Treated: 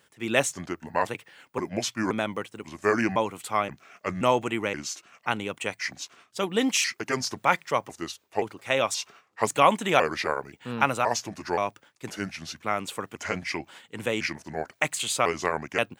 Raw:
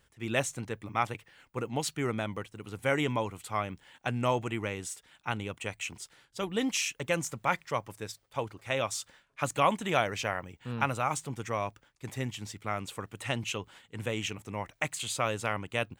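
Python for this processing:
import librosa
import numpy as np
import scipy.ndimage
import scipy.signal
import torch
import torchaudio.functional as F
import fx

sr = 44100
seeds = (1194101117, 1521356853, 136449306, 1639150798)

y = fx.pitch_trill(x, sr, semitones=-4.5, every_ms=526)
y = scipy.signal.sosfilt(scipy.signal.butter(2, 190.0, 'highpass', fs=sr, output='sos'), y)
y = F.gain(torch.from_numpy(y), 6.5).numpy()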